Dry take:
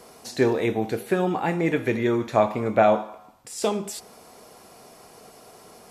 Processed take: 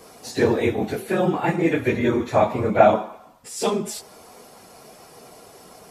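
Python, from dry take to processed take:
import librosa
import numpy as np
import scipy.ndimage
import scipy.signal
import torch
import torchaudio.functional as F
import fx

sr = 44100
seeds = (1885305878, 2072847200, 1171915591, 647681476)

y = fx.phase_scramble(x, sr, seeds[0], window_ms=50)
y = y * 10.0 ** (2.5 / 20.0)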